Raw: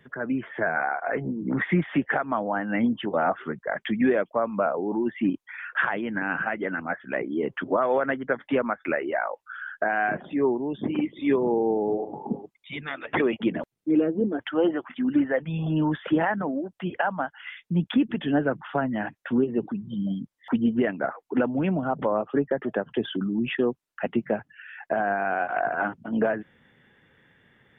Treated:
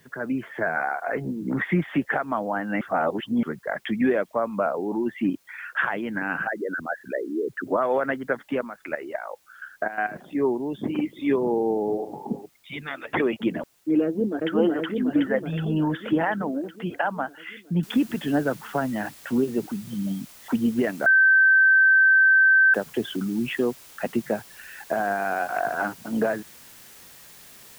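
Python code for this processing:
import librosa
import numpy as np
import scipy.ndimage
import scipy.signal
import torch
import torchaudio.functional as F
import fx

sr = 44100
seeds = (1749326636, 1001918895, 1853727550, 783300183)

y = fx.envelope_sharpen(x, sr, power=3.0, at=(6.47, 7.67))
y = fx.level_steps(y, sr, step_db=12, at=(8.43, 10.35))
y = fx.echo_throw(y, sr, start_s=14.04, length_s=0.49, ms=370, feedback_pct=70, wet_db=-0.5)
y = fx.noise_floor_step(y, sr, seeds[0], at_s=17.83, before_db=-64, after_db=-48, tilt_db=0.0)
y = fx.edit(y, sr, fx.reverse_span(start_s=2.81, length_s=0.62),
    fx.bleep(start_s=21.06, length_s=1.68, hz=1550.0, db=-13.0), tone=tone)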